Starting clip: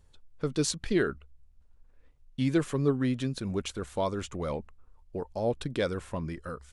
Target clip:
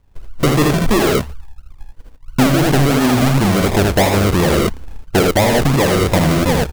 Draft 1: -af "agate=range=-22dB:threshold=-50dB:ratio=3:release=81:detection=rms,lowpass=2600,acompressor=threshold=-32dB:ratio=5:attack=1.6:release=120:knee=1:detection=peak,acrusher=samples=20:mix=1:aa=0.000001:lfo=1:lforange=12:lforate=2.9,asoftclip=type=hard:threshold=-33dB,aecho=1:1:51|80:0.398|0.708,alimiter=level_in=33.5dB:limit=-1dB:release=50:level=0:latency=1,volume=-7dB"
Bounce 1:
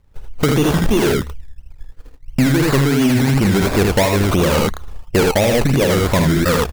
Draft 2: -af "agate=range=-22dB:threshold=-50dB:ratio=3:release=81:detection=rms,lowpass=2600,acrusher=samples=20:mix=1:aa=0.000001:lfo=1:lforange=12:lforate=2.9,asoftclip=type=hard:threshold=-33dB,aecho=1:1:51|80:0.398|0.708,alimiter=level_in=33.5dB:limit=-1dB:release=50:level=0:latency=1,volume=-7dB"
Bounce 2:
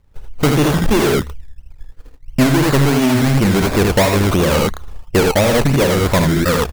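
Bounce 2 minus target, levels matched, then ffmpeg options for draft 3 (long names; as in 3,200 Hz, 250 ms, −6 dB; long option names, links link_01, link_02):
sample-and-hold swept by an LFO: distortion −8 dB
-af "agate=range=-22dB:threshold=-50dB:ratio=3:release=81:detection=rms,lowpass=2600,acrusher=samples=41:mix=1:aa=0.000001:lfo=1:lforange=24.6:lforate=2.9,asoftclip=type=hard:threshold=-33dB,aecho=1:1:51|80:0.398|0.708,alimiter=level_in=33.5dB:limit=-1dB:release=50:level=0:latency=1,volume=-7dB"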